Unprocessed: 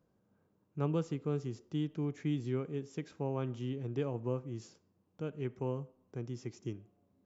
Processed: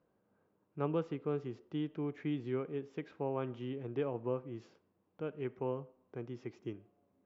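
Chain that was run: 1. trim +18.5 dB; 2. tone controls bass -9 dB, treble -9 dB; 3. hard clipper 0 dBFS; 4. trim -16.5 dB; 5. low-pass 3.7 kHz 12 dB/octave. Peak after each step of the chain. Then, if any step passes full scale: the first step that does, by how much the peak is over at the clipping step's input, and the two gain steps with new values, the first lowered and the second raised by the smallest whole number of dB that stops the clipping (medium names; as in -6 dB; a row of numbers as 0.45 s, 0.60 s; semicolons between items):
-1.0 dBFS, -4.0 dBFS, -4.0 dBFS, -20.5 dBFS, -20.5 dBFS; nothing clips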